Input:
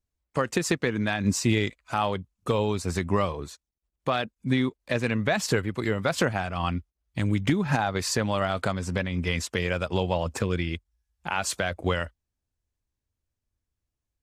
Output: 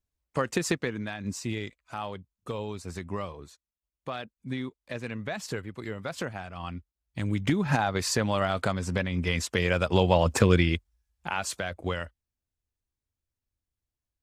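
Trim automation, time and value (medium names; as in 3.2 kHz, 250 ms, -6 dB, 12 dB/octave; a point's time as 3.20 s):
0.71 s -2 dB
1.13 s -9.5 dB
6.67 s -9.5 dB
7.66 s -0.5 dB
9.33 s -0.5 dB
10.51 s +7 dB
11.57 s -5 dB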